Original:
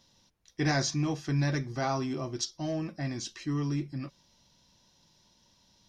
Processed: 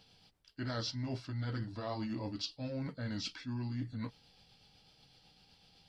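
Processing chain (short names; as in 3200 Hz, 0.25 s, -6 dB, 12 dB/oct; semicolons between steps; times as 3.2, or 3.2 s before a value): delay-line pitch shifter -3 st; reverse; compressor 6:1, threshold -38 dBFS, peak gain reduction 13 dB; reverse; gain +2 dB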